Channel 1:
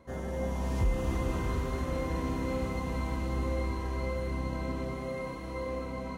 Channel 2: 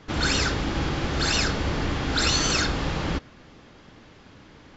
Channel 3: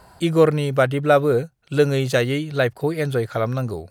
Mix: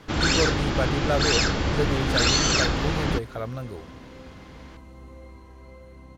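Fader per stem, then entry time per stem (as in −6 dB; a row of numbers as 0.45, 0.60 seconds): −13.0, +1.5, −10.0 decibels; 1.65, 0.00, 0.00 seconds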